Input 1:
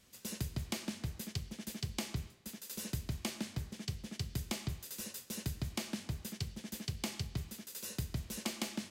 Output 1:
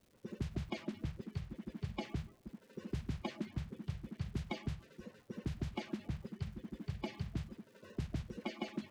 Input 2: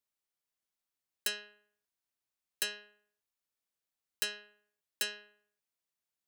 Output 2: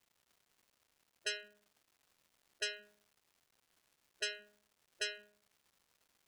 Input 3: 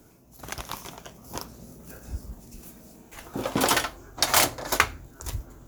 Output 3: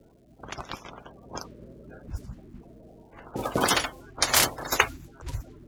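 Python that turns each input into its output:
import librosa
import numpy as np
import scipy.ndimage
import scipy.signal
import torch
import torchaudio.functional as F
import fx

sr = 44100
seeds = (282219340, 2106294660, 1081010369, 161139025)

y = fx.spec_quant(x, sr, step_db=30)
y = fx.env_lowpass(y, sr, base_hz=620.0, full_db=-29.0)
y = fx.dmg_crackle(y, sr, seeds[0], per_s=460.0, level_db=-60.0)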